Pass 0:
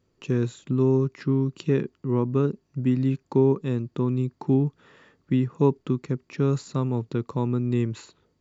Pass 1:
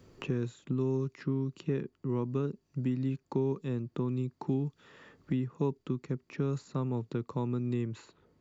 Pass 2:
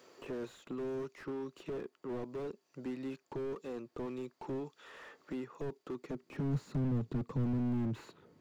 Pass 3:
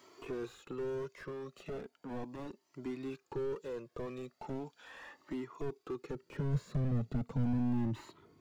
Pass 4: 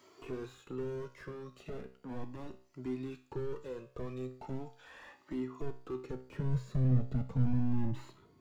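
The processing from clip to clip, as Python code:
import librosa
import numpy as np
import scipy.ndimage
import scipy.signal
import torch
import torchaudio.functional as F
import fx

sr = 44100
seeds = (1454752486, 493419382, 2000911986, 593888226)

y1 = fx.band_squash(x, sr, depth_pct=70)
y1 = F.gain(torch.from_numpy(y1), -9.0).numpy()
y2 = fx.filter_sweep_highpass(y1, sr, from_hz=530.0, to_hz=130.0, start_s=5.9, end_s=6.53, q=0.84)
y2 = fx.slew_limit(y2, sr, full_power_hz=3.6)
y2 = F.gain(torch.from_numpy(y2), 4.5).numpy()
y3 = fx.comb_cascade(y2, sr, direction='rising', hz=0.37)
y3 = F.gain(torch.from_numpy(y3), 5.0).numpy()
y4 = fx.low_shelf(y3, sr, hz=150.0, db=6.5)
y4 = fx.comb_fb(y4, sr, f0_hz=64.0, decay_s=0.46, harmonics='all', damping=0.0, mix_pct=70)
y4 = F.gain(torch.from_numpy(y4), 4.5).numpy()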